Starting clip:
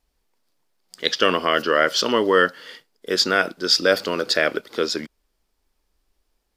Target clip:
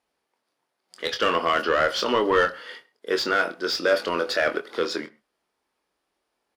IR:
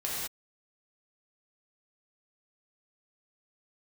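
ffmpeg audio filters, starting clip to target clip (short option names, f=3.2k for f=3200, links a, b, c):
-filter_complex "[0:a]highpass=97,equalizer=f=9.8k:t=o:w=0.23:g=8.5,asplit=2[a][b];[b]highpass=f=720:p=1,volume=17dB,asoftclip=type=tanh:threshold=-2.5dB[c];[a][c]amix=inputs=2:normalize=0,lowpass=f=1.6k:p=1,volume=-6dB,asplit=2[d][e];[e]adelay=24,volume=-7.5dB[f];[d][f]amix=inputs=2:normalize=0,asplit=2[g][h];[1:a]atrim=start_sample=2205,atrim=end_sample=6174,highshelf=f=3.4k:g=-11.5[i];[h][i]afir=irnorm=-1:irlink=0,volume=-20dB[j];[g][j]amix=inputs=2:normalize=0,volume=-7.5dB"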